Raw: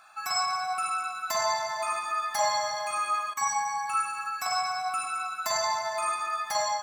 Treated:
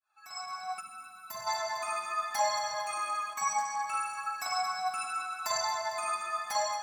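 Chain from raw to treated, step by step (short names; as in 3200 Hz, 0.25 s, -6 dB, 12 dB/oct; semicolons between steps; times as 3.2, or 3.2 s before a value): opening faded in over 1.15 s; flange 0.72 Hz, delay 1.7 ms, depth 3.7 ms, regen +35%; split-band echo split 1900 Hz, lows 0.373 s, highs 0.226 s, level -14 dB; 0.81–1.47 spectral gain 270–9300 Hz -11 dB; 3.58–3.98 Doppler distortion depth 0.12 ms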